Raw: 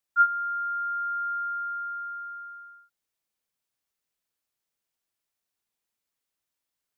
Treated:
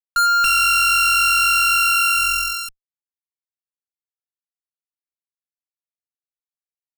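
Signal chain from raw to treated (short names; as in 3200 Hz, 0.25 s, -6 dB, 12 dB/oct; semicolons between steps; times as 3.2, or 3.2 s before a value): 0.44–2.69 sample sorter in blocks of 16 samples; HPF 1200 Hz 6 dB/oct; fuzz box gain 46 dB, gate -45 dBFS; gain -1.5 dB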